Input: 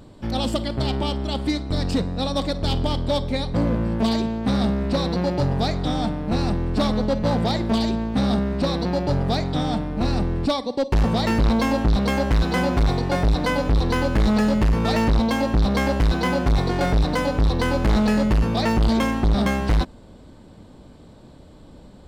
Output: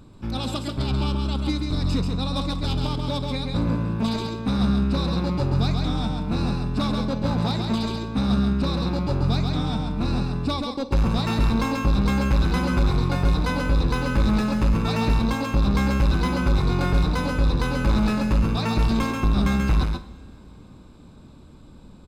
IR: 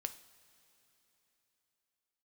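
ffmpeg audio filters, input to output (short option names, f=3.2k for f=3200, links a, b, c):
-filter_complex "[0:a]aecho=1:1:0.8:0.45,asplit=2[a][b];[1:a]atrim=start_sample=2205,adelay=135[c];[b][c]afir=irnorm=-1:irlink=0,volume=-2dB[d];[a][d]amix=inputs=2:normalize=0,volume=-4.5dB"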